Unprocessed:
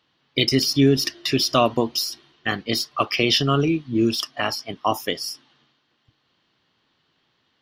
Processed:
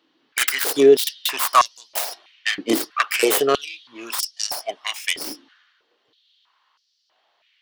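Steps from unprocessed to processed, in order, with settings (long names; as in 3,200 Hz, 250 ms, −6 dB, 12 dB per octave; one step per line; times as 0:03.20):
stylus tracing distortion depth 0.42 ms
0:04.11–0:05.25: parametric band 8,400 Hz +6.5 dB 0.49 octaves
high-pass on a step sequencer 3.1 Hz 300–5,300 Hz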